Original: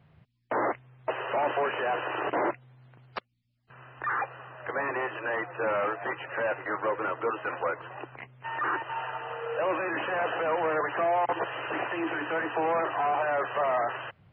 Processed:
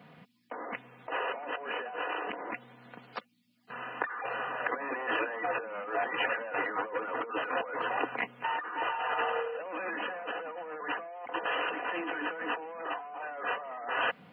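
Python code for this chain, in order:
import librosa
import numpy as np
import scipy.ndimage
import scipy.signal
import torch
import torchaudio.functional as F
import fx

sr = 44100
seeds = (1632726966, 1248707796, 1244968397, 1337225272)

y = scipy.signal.sosfilt(scipy.signal.butter(4, 170.0, 'highpass', fs=sr, output='sos'), x)
y = y + 0.55 * np.pad(y, (int(4.1 * sr / 1000.0), 0))[:len(y)]
y = fx.over_compress(y, sr, threshold_db=-38.0, ratio=-1.0)
y = y * librosa.db_to_amplitude(2.0)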